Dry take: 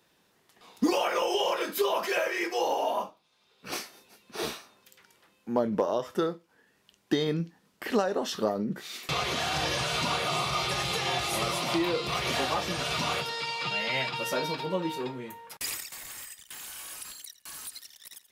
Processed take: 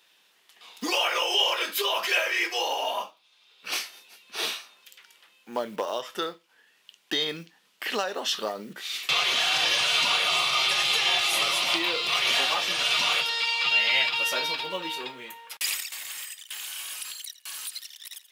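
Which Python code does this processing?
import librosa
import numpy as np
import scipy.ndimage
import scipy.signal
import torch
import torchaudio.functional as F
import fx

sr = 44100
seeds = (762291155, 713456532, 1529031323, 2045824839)

y = fx.block_float(x, sr, bits=7)
y = fx.highpass(y, sr, hz=1200.0, slope=6)
y = fx.peak_eq(y, sr, hz=3000.0, db=7.5, octaves=0.92)
y = y * 10.0 ** (4.0 / 20.0)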